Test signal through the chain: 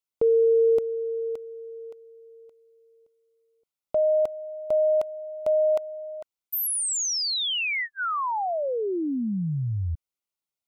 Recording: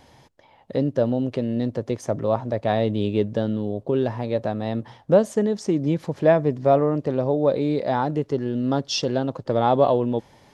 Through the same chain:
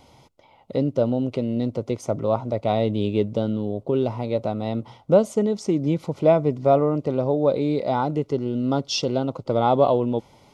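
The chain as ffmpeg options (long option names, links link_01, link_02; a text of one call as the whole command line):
ffmpeg -i in.wav -af "asuperstop=centerf=1700:order=8:qfactor=4.3" out.wav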